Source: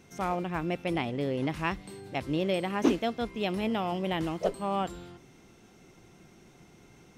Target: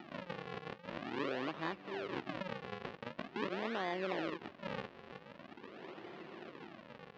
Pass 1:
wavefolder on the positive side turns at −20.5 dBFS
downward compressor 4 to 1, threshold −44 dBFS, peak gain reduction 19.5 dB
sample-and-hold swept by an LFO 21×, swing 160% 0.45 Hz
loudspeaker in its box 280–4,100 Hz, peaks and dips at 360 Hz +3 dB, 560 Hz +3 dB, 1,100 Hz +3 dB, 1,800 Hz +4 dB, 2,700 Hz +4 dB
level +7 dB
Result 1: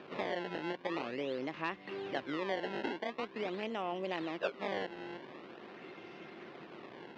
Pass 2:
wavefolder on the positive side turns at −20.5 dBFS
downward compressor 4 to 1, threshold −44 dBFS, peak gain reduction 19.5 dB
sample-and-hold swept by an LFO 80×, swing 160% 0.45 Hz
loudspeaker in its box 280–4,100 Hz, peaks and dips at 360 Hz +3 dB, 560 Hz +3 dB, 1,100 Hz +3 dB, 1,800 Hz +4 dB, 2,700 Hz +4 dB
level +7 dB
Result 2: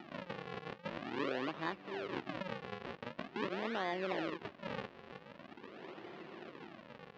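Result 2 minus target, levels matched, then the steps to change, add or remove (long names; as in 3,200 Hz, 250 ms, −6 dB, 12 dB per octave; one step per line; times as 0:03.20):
wavefolder on the positive side: distortion −8 dB
change: wavefolder on the positive side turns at −28.5 dBFS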